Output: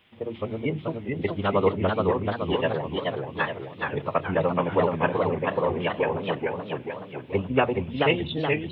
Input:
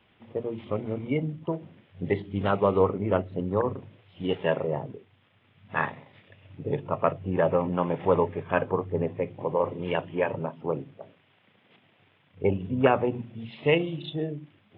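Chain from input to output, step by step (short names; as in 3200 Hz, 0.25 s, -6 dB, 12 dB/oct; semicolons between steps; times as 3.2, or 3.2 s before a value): high shelf 2400 Hz +11.5 dB; time stretch by phase-locked vocoder 0.59×; warbling echo 0.43 s, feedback 54%, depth 185 cents, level -3 dB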